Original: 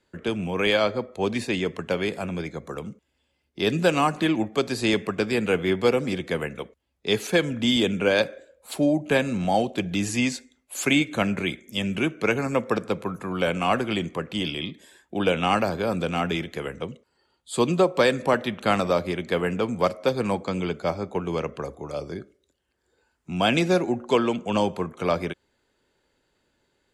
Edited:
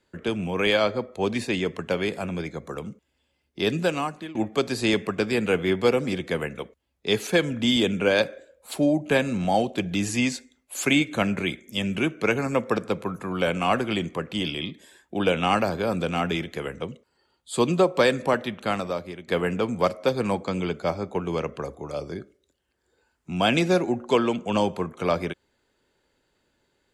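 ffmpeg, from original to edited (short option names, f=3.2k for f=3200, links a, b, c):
-filter_complex "[0:a]asplit=3[a][b][c];[a]atrim=end=4.35,asetpts=PTS-STARTPTS,afade=t=out:st=3.6:d=0.75:silence=0.0891251[d];[b]atrim=start=4.35:end=19.28,asetpts=PTS-STARTPTS,afade=t=in:d=0.004:c=hsin:silence=0.0891251,afade=t=out:st=13.77:d=1.16:silence=0.237137[e];[c]atrim=start=19.28,asetpts=PTS-STARTPTS,afade=t=in:d=0.004:c=hsin:silence=0.237137[f];[d][e][f]concat=n=3:v=0:a=1"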